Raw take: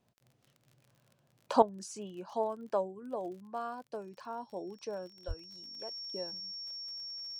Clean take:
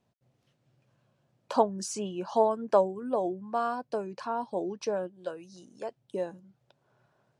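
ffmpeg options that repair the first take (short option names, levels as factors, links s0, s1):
-filter_complex "[0:a]adeclick=t=4,bandreject=f=5500:w=30,asplit=3[s0][s1][s2];[s0]afade=t=out:st=5.27:d=0.02[s3];[s1]highpass=f=140:w=0.5412,highpass=f=140:w=1.3066,afade=t=in:st=5.27:d=0.02,afade=t=out:st=5.39:d=0.02[s4];[s2]afade=t=in:st=5.39:d=0.02[s5];[s3][s4][s5]amix=inputs=3:normalize=0,asetnsamples=n=441:p=0,asendcmd='1.62 volume volume 9dB',volume=1"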